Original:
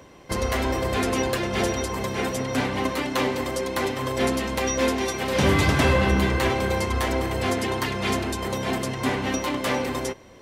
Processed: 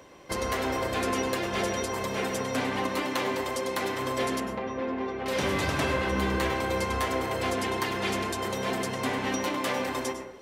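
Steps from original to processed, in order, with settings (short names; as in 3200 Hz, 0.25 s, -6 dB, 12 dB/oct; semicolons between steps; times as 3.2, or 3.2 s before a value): tone controls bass -7 dB, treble 0 dB; compressor 3:1, threshold -24 dBFS, peak gain reduction 5.5 dB; 4.4–5.26 tape spacing loss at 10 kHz 42 dB; plate-style reverb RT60 0.63 s, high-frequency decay 0.3×, pre-delay 90 ms, DRR 5.5 dB; gain -2 dB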